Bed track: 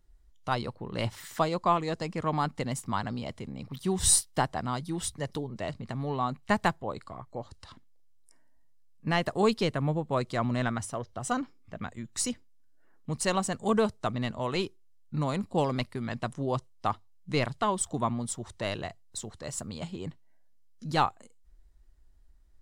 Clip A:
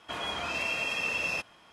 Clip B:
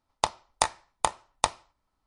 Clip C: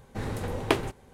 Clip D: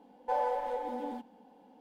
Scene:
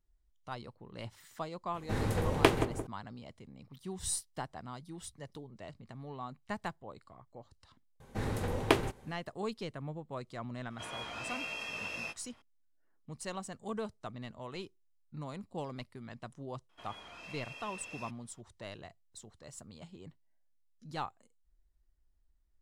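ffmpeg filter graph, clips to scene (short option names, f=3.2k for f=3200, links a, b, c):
-filter_complex "[3:a]asplit=2[a][b];[1:a]asplit=2[c][d];[0:a]volume=-13dB[e];[a]asplit=2[f][g];[g]adelay=173,lowpass=f=850:p=1,volume=-7dB,asplit=2[h][i];[i]adelay=173,lowpass=f=850:p=1,volume=0.47,asplit=2[j][k];[k]adelay=173,lowpass=f=850:p=1,volume=0.47,asplit=2[l][m];[m]adelay=173,lowpass=f=850:p=1,volume=0.47,asplit=2[n][o];[o]adelay=173,lowpass=f=850:p=1,volume=0.47,asplit=2[p][q];[q]adelay=173,lowpass=f=850:p=1,volume=0.47[r];[f][h][j][l][n][p][r]amix=inputs=7:normalize=0[s];[c]asplit=2[t][u];[u]adelay=18,volume=-3.5dB[v];[t][v]amix=inputs=2:normalize=0[w];[s]atrim=end=1.13,asetpts=PTS-STARTPTS,afade=t=in:d=0.004:c=hsin,afade=t=out:st=1.126:d=0.004:c=hsin,adelay=1740[x];[b]atrim=end=1.13,asetpts=PTS-STARTPTS,volume=-2dB,afade=t=in:d=0.004:c=hsin,afade=t=out:st=1.126:d=0.004:c=hsin,adelay=8000[y];[w]atrim=end=1.72,asetpts=PTS-STARTPTS,volume=-10dB,afade=t=in:d=0.004:c=hsin,afade=t=out:st=1.716:d=0.004:c=hsin,adelay=10700[z];[d]atrim=end=1.72,asetpts=PTS-STARTPTS,volume=-17dB,afade=t=in:d=0.004:c=hsin,afade=t=out:st=1.716:d=0.004:c=hsin,adelay=16690[aa];[e][x][y][z][aa]amix=inputs=5:normalize=0"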